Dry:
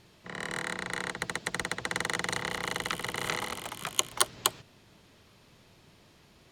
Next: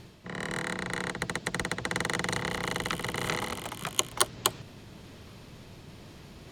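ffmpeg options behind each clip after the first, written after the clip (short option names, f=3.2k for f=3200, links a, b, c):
-af "lowshelf=f=420:g=7,areverse,acompressor=mode=upward:threshold=-39dB:ratio=2.5,areverse"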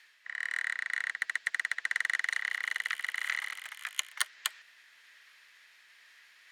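-af "highpass=f=1.8k:t=q:w=4.6,volume=-8dB"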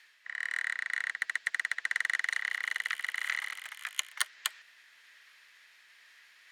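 -af anull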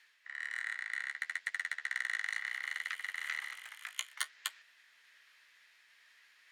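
-af "flanger=delay=9.5:depth=9.7:regen=-39:speed=0.66:shape=triangular,volume=-1.5dB"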